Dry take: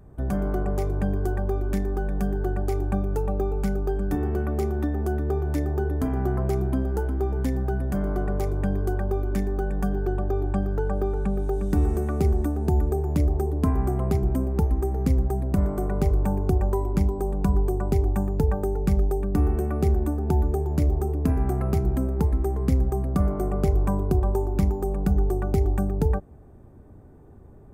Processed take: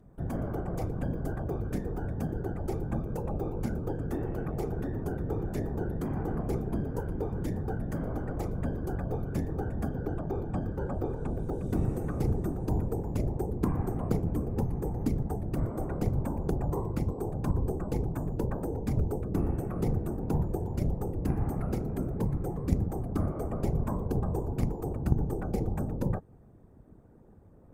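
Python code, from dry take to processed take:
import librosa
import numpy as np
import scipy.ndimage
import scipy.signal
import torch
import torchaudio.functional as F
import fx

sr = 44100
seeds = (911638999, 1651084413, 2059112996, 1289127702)

y = fx.whisperise(x, sr, seeds[0])
y = fx.cheby_harmonics(y, sr, harmonics=(2, 4), levels_db=(-7, -16), full_scale_db=-6.5)
y = y * 10.0 ** (-7.0 / 20.0)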